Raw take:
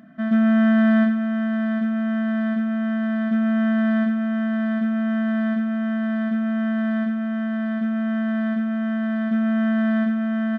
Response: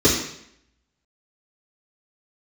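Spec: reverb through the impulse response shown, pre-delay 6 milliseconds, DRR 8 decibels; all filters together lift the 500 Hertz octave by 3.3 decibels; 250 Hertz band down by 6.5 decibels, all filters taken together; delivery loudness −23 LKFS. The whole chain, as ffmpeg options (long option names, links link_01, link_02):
-filter_complex "[0:a]equalizer=frequency=250:width_type=o:gain=-8.5,equalizer=frequency=500:width_type=o:gain=7,asplit=2[link_01][link_02];[1:a]atrim=start_sample=2205,adelay=6[link_03];[link_02][link_03]afir=irnorm=-1:irlink=0,volume=-29dB[link_04];[link_01][link_04]amix=inputs=2:normalize=0,volume=5dB"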